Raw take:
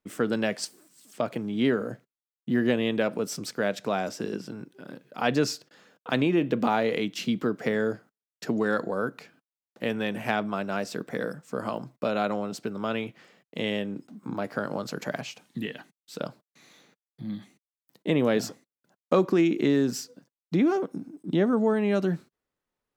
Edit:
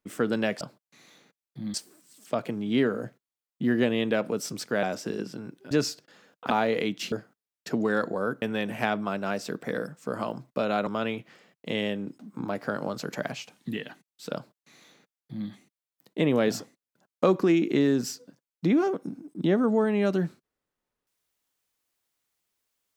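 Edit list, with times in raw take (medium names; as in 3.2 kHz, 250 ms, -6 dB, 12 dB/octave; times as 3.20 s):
3.70–3.97 s: delete
4.85–5.34 s: delete
6.13–6.66 s: delete
7.28–7.88 s: delete
9.18–9.88 s: delete
12.33–12.76 s: delete
16.24–17.37 s: copy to 0.61 s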